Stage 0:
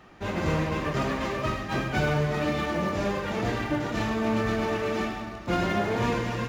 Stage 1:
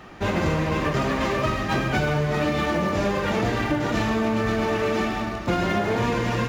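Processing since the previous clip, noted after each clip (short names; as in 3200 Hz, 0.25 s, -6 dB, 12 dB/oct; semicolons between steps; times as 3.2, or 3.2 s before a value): compressor, threshold -28 dBFS, peak gain reduction 7 dB; gain +8.5 dB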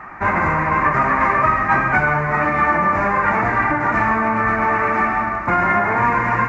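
EQ curve 290 Hz 0 dB, 480 Hz -3 dB, 990 Hz +14 dB, 2200 Hz +10 dB, 3200 Hz -17 dB, 6300 Hz -10 dB, 13000 Hz -12 dB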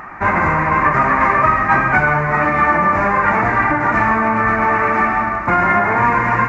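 upward compressor, threshold -39 dBFS; gain +2.5 dB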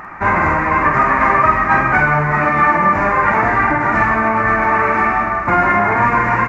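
doubler 48 ms -6.5 dB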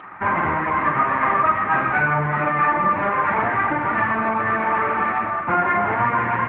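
gain -5 dB; AMR-NB 10.2 kbps 8000 Hz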